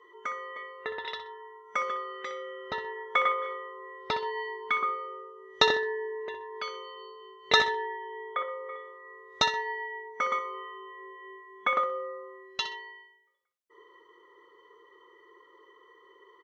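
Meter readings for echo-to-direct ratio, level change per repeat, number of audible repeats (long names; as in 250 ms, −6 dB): −10.5 dB, −11.5 dB, 2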